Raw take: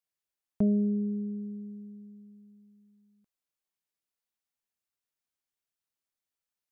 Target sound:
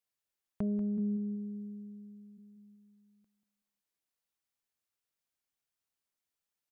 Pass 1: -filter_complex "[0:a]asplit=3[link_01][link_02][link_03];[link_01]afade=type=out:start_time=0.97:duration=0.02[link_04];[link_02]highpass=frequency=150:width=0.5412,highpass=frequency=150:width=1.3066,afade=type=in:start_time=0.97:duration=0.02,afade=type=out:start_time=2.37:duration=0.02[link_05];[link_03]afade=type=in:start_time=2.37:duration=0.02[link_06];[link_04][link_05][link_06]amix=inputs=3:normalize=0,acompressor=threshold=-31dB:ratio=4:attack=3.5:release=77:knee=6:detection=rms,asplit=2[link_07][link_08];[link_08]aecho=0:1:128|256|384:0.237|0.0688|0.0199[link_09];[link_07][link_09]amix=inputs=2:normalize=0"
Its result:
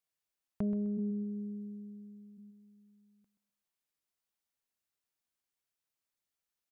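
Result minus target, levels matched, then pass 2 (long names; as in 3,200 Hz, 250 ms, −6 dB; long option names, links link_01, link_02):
echo 60 ms early
-filter_complex "[0:a]asplit=3[link_01][link_02][link_03];[link_01]afade=type=out:start_time=0.97:duration=0.02[link_04];[link_02]highpass=frequency=150:width=0.5412,highpass=frequency=150:width=1.3066,afade=type=in:start_time=0.97:duration=0.02,afade=type=out:start_time=2.37:duration=0.02[link_05];[link_03]afade=type=in:start_time=2.37:duration=0.02[link_06];[link_04][link_05][link_06]amix=inputs=3:normalize=0,acompressor=threshold=-31dB:ratio=4:attack=3.5:release=77:knee=6:detection=rms,asplit=2[link_07][link_08];[link_08]aecho=0:1:188|376|564:0.237|0.0688|0.0199[link_09];[link_07][link_09]amix=inputs=2:normalize=0"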